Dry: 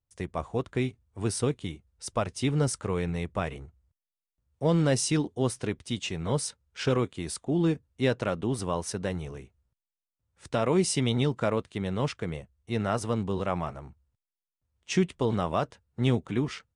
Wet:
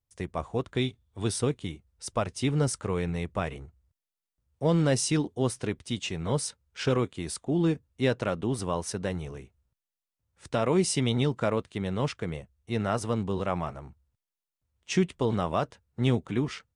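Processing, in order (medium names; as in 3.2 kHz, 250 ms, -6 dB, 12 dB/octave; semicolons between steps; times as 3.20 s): 0.75–1.37 s: peaking EQ 3.5 kHz +14 dB 0.23 oct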